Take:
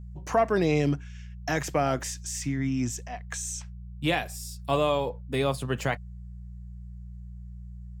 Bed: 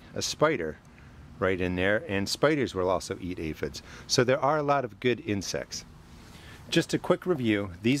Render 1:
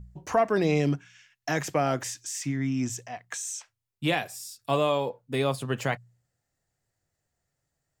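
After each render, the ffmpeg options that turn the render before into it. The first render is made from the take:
-af "bandreject=f=60:t=h:w=4,bandreject=f=120:t=h:w=4,bandreject=f=180:t=h:w=4"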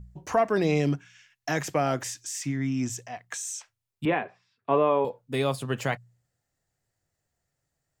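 -filter_complex "[0:a]asettb=1/sr,asplit=3[a][b][c];[a]atrim=end=4.054[d];[b]atrim=start=4.05:end=5.05,asetpts=PTS-STARTPTS,afade=t=in:d=0.004:c=qsin,afade=t=out:st=0.996:d=0.004:c=qsin,highpass=130,equalizer=f=130:t=q:w=4:g=-4,equalizer=f=240:t=q:w=4:g=5,equalizer=f=410:t=q:w=4:g=8,equalizer=f=1k:t=q:w=4:g=5,lowpass=f=2.3k:w=0.5412,lowpass=f=2.3k:w=1.3066[e];[c]atrim=start=5.046[f];[d][e]acrossfade=d=0.004:c1=hsin:c2=qsin[g];[g][f]acrossfade=d=0.004:c1=qsin:c2=hsin"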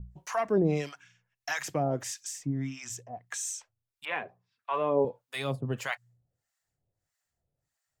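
-filter_complex "[0:a]aphaser=in_gain=1:out_gain=1:delay=2.2:decay=0.24:speed=1.8:type=triangular,acrossover=split=820[a][b];[a]aeval=exprs='val(0)*(1-1/2+1/2*cos(2*PI*1.6*n/s))':c=same[c];[b]aeval=exprs='val(0)*(1-1/2-1/2*cos(2*PI*1.6*n/s))':c=same[d];[c][d]amix=inputs=2:normalize=0"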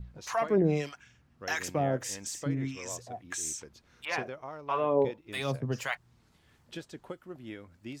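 -filter_complex "[1:a]volume=-17.5dB[a];[0:a][a]amix=inputs=2:normalize=0"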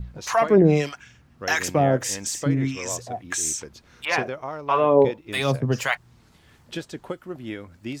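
-af "volume=9.5dB"

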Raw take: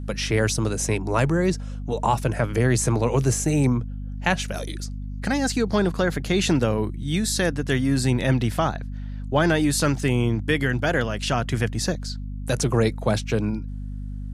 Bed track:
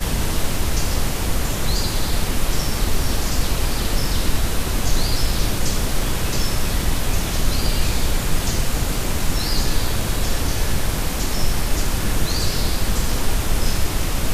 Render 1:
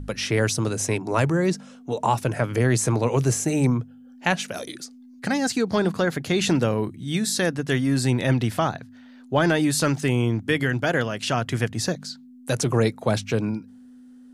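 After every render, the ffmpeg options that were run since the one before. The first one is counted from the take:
-af "bandreject=f=50:t=h:w=4,bandreject=f=100:t=h:w=4,bandreject=f=150:t=h:w=4,bandreject=f=200:t=h:w=4"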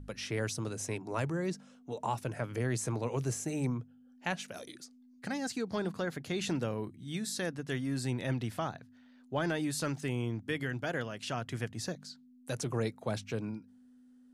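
-af "volume=-12.5dB"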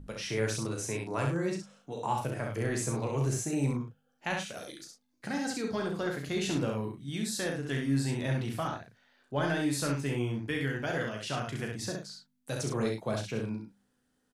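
-filter_complex "[0:a]asplit=2[a][b];[b]adelay=36,volume=-7dB[c];[a][c]amix=inputs=2:normalize=0,aecho=1:1:14|66:0.398|0.668"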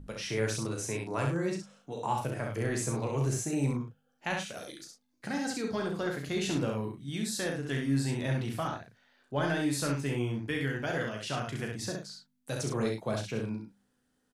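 -af anull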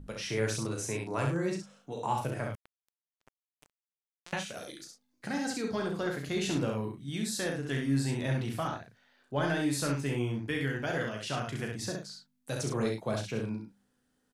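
-filter_complex "[0:a]asettb=1/sr,asplit=3[a][b][c];[a]atrim=end=2.554[d];[b]atrim=start=2.55:end=4.33,asetpts=PTS-STARTPTS,afade=t=in:d=0.004:c=qsin,afade=t=out:st=1.776:d=0.004:c=qsin,acrusher=bits=2:mix=0:aa=0.5[e];[c]atrim=start=4.326[f];[d][e]acrossfade=d=0.004:c1=hsin:c2=qsin[g];[g][f]acrossfade=d=0.004:c1=qsin:c2=hsin"

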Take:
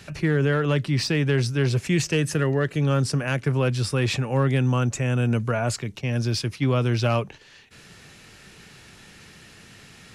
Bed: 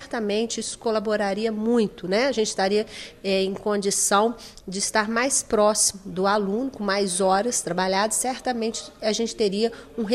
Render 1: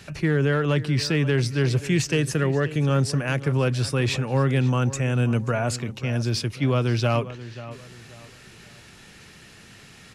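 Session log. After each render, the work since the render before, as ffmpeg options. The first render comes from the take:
-filter_complex "[0:a]asplit=2[a][b];[b]adelay=533,lowpass=f=3.4k:p=1,volume=-15dB,asplit=2[c][d];[d]adelay=533,lowpass=f=3.4k:p=1,volume=0.33,asplit=2[e][f];[f]adelay=533,lowpass=f=3.4k:p=1,volume=0.33[g];[a][c][e][g]amix=inputs=4:normalize=0"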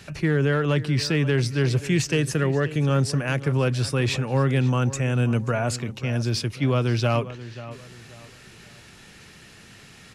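-af anull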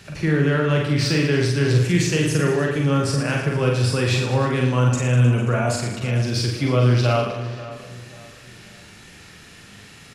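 -filter_complex "[0:a]asplit=2[a][b];[b]adelay=40,volume=-5dB[c];[a][c]amix=inputs=2:normalize=0,aecho=1:1:50|115|199.5|309.4|452.2:0.631|0.398|0.251|0.158|0.1"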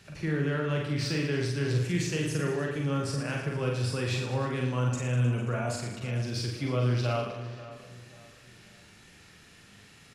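-af "volume=-10dB"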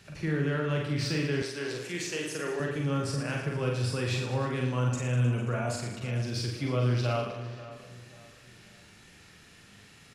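-filter_complex "[0:a]asettb=1/sr,asplit=3[a][b][c];[a]atrim=end=1.424[d];[b]atrim=start=1.42:end=2.6,asetpts=PTS-STARTPTS,afade=t=in:d=0.004:c=qsin,afade=t=out:st=1.176:d=0.004:c=qsin,highpass=350[e];[c]atrim=start=2.596[f];[d][e]acrossfade=d=0.004:c1=hsin:c2=qsin[g];[g][f]acrossfade=d=0.004:c1=qsin:c2=hsin"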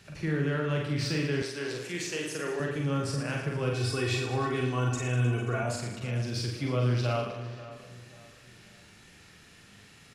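-filter_complex "[0:a]asettb=1/sr,asplit=3[a][b][c];[a]atrim=end=3.734[d];[b]atrim=start=3.73:end=5.63,asetpts=PTS-STARTPTS,afade=t=in:d=0.004:c=qsin,afade=t=out:st=1.896:d=0.004:c=qsin,aecho=1:1:2.7:0.76,atrim=end_sample=83790[e];[c]atrim=start=5.626[f];[d][e]acrossfade=d=0.004:c1=hsin:c2=qsin[g];[g][f]acrossfade=d=0.004:c1=qsin:c2=hsin"

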